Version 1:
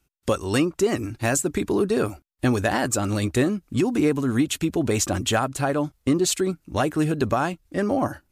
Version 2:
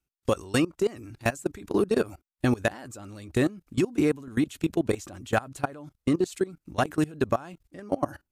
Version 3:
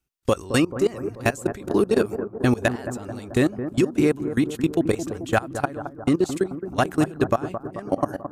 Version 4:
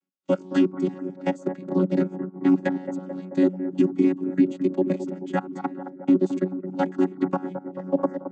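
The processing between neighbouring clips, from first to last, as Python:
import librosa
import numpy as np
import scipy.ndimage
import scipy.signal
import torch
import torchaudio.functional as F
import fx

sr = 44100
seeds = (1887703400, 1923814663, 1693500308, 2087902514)

y1 = fx.level_steps(x, sr, step_db=21)
y2 = fx.echo_bbd(y1, sr, ms=218, stages=2048, feedback_pct=64, wet_db=-10.0)
y2 = F.gain(torch.from_numpy(y2), 4.0).numpy()
y3 = fx.chord_vocoder(y2, sr, chord='bare fifth', root=54)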